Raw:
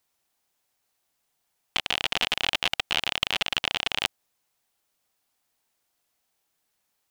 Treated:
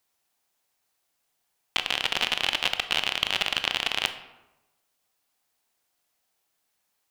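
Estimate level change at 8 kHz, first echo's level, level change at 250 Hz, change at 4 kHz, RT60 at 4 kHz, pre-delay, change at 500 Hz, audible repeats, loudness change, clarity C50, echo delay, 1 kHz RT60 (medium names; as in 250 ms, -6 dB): 0.0 dB, no echo, -1.0 dB, +0.5 dB, 0.60 s, 19 ms, 0.0 dB, no echo, +0.5 dB, 11.0 dB, no echo, 1.0 s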